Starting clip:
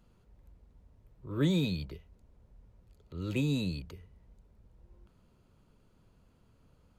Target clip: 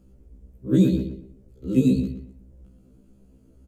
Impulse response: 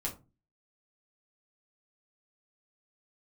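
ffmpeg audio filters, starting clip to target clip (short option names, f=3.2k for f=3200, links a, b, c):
-filter_complex "[0:a]bass=f=250:g=5,treble=f=4k:g=1,bandreject=f=179.1:t=h:w=4,bandreject=f=358.2:t=h:w=4,bandreject=f=537.3:t=h:w=4,bandreject=f=716.4:t=h:w=4,bandreject=f=895.5:t=h:w=4,bandreject=f=1.0746k:t=h:w=4,bandreject=f=1.2537k:t=h:w=4,bandreject=f=1.4328k:t=h:w=4,bandreject=f=1.6119k:t=h:w=4,bandreject=f=1.791k:t=h:w=4,bandreject=f=1.9701k:t=h:w=4,bandreject=f=2.1492k:t=h:w=4,bandreject=f=2.3283k:t=h:w=4,bandreject=f=2.5074k:t=h:w=4,atempo=1.9,equalizer=f=125:t=o:w=1:g=-4,equalizer=f=250:t=o:w=1:g=7,equalizer=f=500:t=o:w=1:g=4,equalizer=f=1k:t=o:w=1:g=-11,equalizer=f=2k:t=o:w=1:g=-5,equalizer=f=4k:t=o:w=1:g=-8,equalizer=f=8k:t=o:w=1:g=3,asplit=2[a][b];[b]adelay=120,lowpass=f=2.8k:p=1,volume=-6dB,asplit=2[c][d];[d]adelay=120,lowpass=f=2.8k:p=1,volume=0.31,asplit=2[e][f];[f]adelay=120,lowpass=f=2.8k:p=1,volume=0.31,asplit=2[g][h];[h]adelay=120,lowpass=f=2.8k:p=1,volume=0.31[i];[c][e][g][i]amix=inputs=4:normalize=0[j];[a][j]amix=inputs=2:normalize=0,afftfilt=real='re*1.73*eq(mod(b,3),0)':imag='im*1.73*eq(mod(b,3),0)':win_size=2048:overlap=0.75,volume=8.5dB"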